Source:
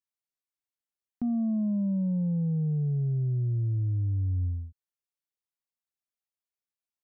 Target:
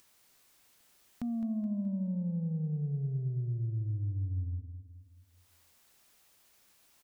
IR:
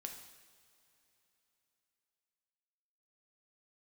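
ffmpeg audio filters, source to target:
-filter_complex "[0:a]acompressor=mode=upward:threshold=-33dB:ratio=2.5,asplit=2[a][b];[b]aecho=0:1:212|424|636|848|1060:0.316|0.145|0.0669|0.0308|0.0142[c];[a][c]amix=inputs=2:normalize=0,volume=-6.5dB"

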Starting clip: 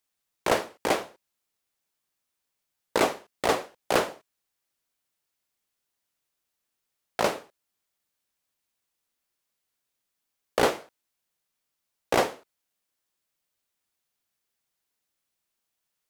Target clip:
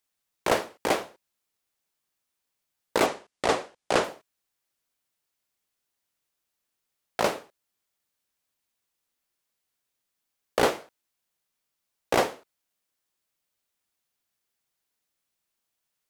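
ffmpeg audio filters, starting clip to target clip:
-filter_complex "[0:a]asettb=1/sr,asplit=3[a][b][c];[a]atrim=end=3.064[d];[b]atrim=start=3.06:end=4.04,asetpts=PTS-STARTPTS,afade=t=in:d=0.004:c=qsin,afade=t=out:st=0.976:d=0.004:c=qsin,lowpass=f=9.6k:w=0.5412,lowpass=f=9.6k:w=1.3066[e];[c]atrim=start=4.036[f];[d][e]acrossfade=d=0.004:c1=hsin:c2=qsin[g];[g][f]acrossfade=d=0.004:c1=qsin:c2=hsin"

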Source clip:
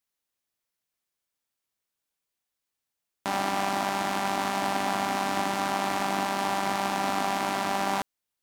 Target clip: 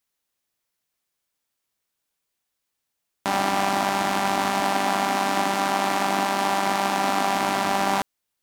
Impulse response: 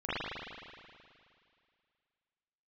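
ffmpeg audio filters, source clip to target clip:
-filter_complex "[0:a]asettb=1/sr,asplit=3[a][b][c];[a]atrim=end=4.604[d];[b]atrim=start=4.6:end=7.35,asetpts=PTS-STARTPTS,afade=t=in:d=0.004:c=qsin,afade=t=out:st=2.746:d=0.004:c=qsin,highpass=160[e];[c]atrim=start=7.346[f];[d][e]acrossfade=d=0.004:c1=hsin:c2=qsin[g];[g][f]acrossfade=d=0.004:c1=qsin:c2=hsin,volume=5dB"

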